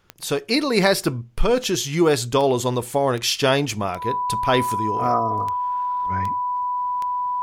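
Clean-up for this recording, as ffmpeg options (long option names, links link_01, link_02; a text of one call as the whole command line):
ffmpeg -i in.wav -af "adeclick=threshold=4,bandreject=frequency=990:width=30" out.wav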